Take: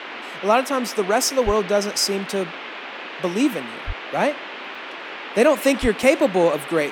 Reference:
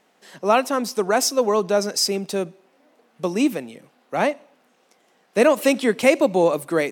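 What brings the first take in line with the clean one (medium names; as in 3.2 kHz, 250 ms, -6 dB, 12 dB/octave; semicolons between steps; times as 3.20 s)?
1.45–1.57 s: high-pass 140 Hz 24 dB/octave; 3.86–3.98 s: high-pass 140 Hz 24 dB/octave; 5.81–5.93 s: high-pass 140 Hz 24 dB/octave; interpolate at 1.30/1.98/4.75/6.03 s, 2.4 ms; noise print and reduce 27 dB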